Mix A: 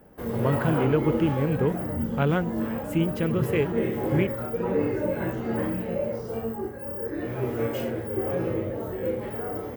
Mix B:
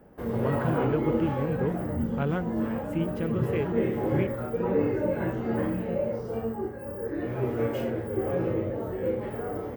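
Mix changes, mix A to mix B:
speech -5.0 dB; master: add treble shelf 3.4 kHz -8.5 dB

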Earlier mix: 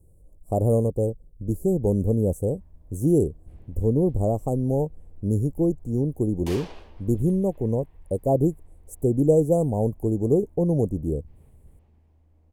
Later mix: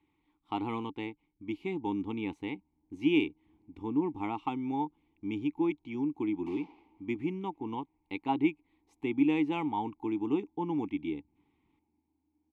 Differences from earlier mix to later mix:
speech: remove elliptic band-stop 600–8200 Hz, stop band 50 dB; master: add vowel filter u

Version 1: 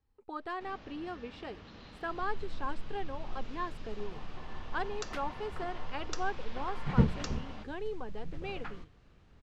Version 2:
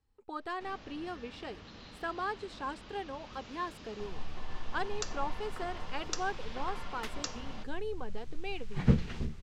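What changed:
second sound: entry +1.90 s; master: add treble shelf 5.4 kHz +11 dB

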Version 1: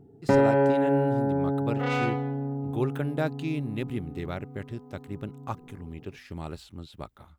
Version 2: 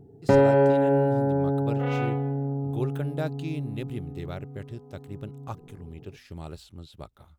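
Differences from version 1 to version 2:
first sound +5.0 dB; second sound: add low-pass 3 kHz 24 dB/octave; master: add ten-band graphic EQ 250 Hz -5 dB, 1 kHz -4 dB, 2 kHz -5 dB

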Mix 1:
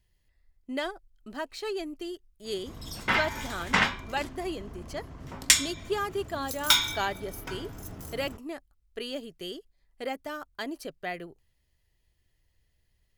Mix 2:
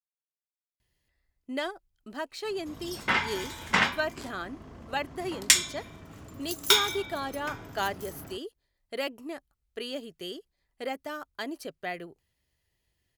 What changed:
speech: entry +0.80 s; master: add high-pass 110 Hz 6 dB/octave

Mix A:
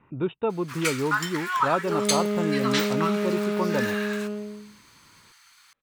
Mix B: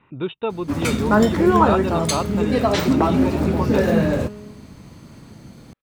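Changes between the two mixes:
speech: remove distance through air 440 m; first sound: remove inverse Chebyshev high-pass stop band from 590 Hz, stop band 40 dB; second sound -5.0 dB

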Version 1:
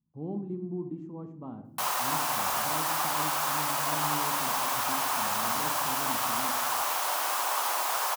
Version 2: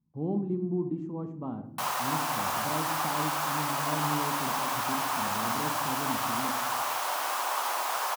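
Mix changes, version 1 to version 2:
speech +5.0 dB; background: add treble shelf 5.1 kHz -5.5 dB

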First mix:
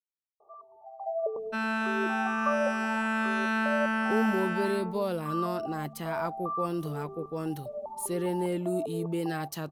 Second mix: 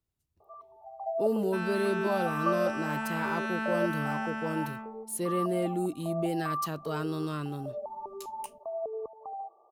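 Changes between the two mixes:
speech: entry -2.90 s; second sound -5.0 dB

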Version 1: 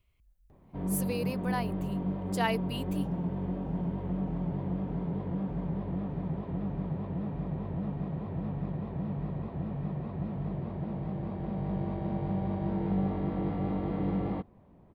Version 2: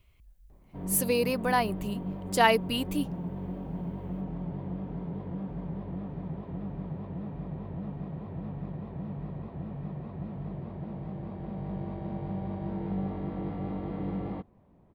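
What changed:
speech +8.5 dB; background -3.0 dB

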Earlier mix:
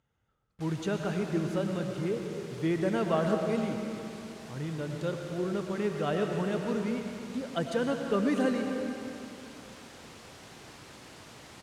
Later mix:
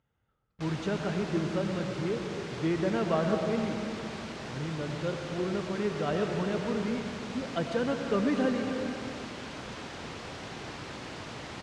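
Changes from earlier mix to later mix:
background +9.5 dB; master: add distance through air 91 m

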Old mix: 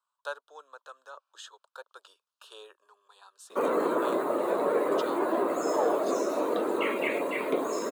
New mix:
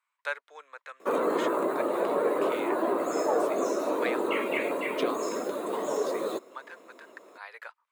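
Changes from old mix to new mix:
speech: remove Butterworth band-stop 2.1 kHz, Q 1.2; background: entry -2.50 s

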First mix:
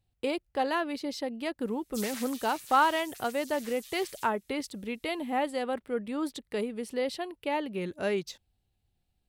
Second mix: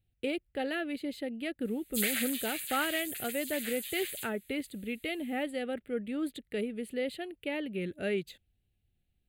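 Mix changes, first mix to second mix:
background +11.5 dB; master: add static phaser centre 2.4 kHz, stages 4

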